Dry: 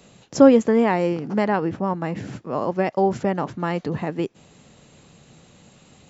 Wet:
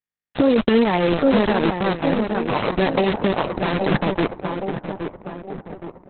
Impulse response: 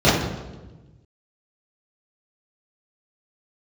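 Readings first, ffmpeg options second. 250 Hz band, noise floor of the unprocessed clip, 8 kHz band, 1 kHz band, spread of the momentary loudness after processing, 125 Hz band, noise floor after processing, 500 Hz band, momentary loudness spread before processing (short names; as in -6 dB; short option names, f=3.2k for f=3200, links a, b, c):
+1.5 dB, -53 dBFS, n/a, +2.0 dB, 16 LU, +3.0 dB, under -85 dBFS, +1.0 dB, 15 LU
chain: -filter_complex "[0:a]bandreject=f=3k:w=6.5,acrusher=bits=3:mix=0:aa=0.000001,asplit=2[a][b];[b]adelay=819,lowpass=f=1.9k:p=1,volume=-8dB,asplit=2[c][d];[d]adelay=819,lowpass=f=1.9k:p=1,volume=0.53,asplit=2[e][f];[f]adelay=819,lowpass=f=1.9k:p=1,volume=0.53,asplit=2[g][h];[h]adelay=819,lowpass=f=1.9k:p=1,volume=0.53,asplit=2[i][j];[j]adelay=819,lowpass=f=1.9k:p=1,volume=0.53,asplit=2[k][l];[l]adelay=819,lowpass=f=1.9k:p=1,volume=0.53[m];[c][e][g][i][k][m]amix=inputs=6:normalize=0[n];[a][n]amix=inputs=2:normalize=0,alimiter=level_in=12dB:limit=-1dB:release=50:level=0:latency=1,volume=-7dB" -ar 48000 -c:a libopus -b:a 6k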